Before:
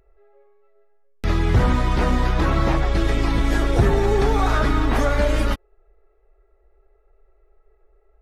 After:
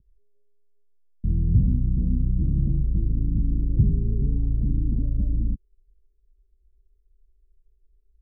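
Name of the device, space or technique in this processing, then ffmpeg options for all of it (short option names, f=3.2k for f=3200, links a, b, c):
the neighbour's flat through the wall: -af "lowpass=f=230:w=0.5412,lowpass=f=230:w=1.3066,equalizer=f=150:t=o:w=0.77:g=4.5,volume=-2.5dB"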